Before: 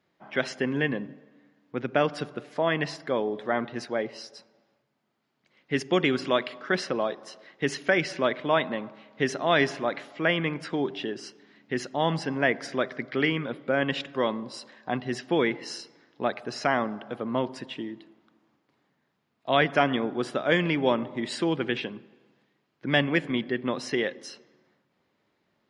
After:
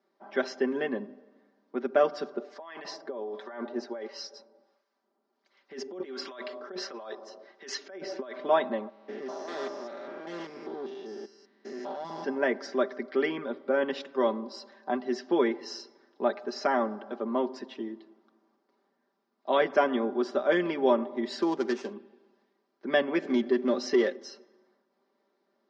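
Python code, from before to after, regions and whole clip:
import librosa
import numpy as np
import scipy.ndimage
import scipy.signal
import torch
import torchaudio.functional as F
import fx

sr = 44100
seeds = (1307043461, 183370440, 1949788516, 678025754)

y = fx.chain(x, sr, fx.low_shelf(hz=200.0, db=-10.5),
    fx.over_compress(threshold_db=-34.0, ratio=-1.0),
    fx.harmonic_tremolo(hz=1.4, depth_pct=70, crossover_hz=910.0), at=(2.36, 8.36))
y = fx.chain(y, sr, fx.spec_steps(hold_ms=200),
    fx.tube_stage(drive_db=30.0, bias=0.65), at=(8.89, 12.24))
y = fx.chain(y, sr, fx.dead_time(dead_ms=0.12),
    fx.resample_linear(factor=3), at=(21.42, 21.93))
y = fx.chain(y, sr, fx.peak_eq(hz=1000.0, db=-8.5, octaves=0.37),
    fx.leveller(passes=1), at=(23.22, 24.16))
y = scipy.signal.sosfilt(scipy.signal.ellip(3, 1.0, 40, [260.0, 5600.0], 'bandpass', fs=sr, output='sos'), y)
y = fx.peak_eq(y, sr, hz=2600.0, db=-12.0, octaves=1.4)
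y = y + 0.75 * np.pad(y, (int(5.1 * sr / 1000.0), 0))[:len(y)]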